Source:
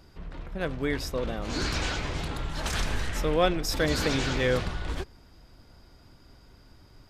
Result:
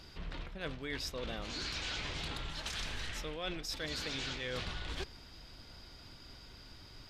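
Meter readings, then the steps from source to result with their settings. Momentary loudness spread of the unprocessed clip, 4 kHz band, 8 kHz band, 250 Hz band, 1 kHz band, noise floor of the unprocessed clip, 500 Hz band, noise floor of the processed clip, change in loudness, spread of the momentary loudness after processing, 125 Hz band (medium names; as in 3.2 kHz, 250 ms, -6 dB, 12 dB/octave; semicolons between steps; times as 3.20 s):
11 LU, -5.0 dB, -9.0 dB, -14.0 dB, -13.0 dB, -55 dBFS, -15.0 dB, -54 dBFS, -10.5 dB, 15 LU, -13.0 dB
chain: peaking EQ 3.6 kHz +11 dB 2 oct; reverse; compression 10:1, threshold -35 dBFS, peak gain reduction 20 dB; reverse; trim -1.5 dB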